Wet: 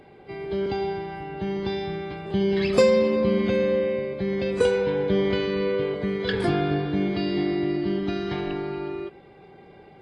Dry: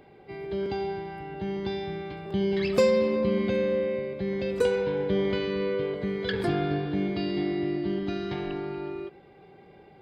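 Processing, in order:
level +3.5 dB
AAC 32 kbit/s 24,000 Hz

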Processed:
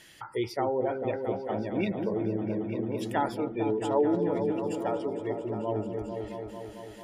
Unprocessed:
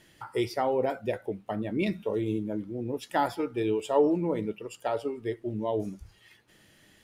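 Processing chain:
gate on every frequency bin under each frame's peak −30 dB strong
echo whose low-pass opens from repeat to repeat 223 ms, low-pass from 400 Hz, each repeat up 1 octave, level −3 dB
one half of a high-frequency compander encoder only
level −2 dB

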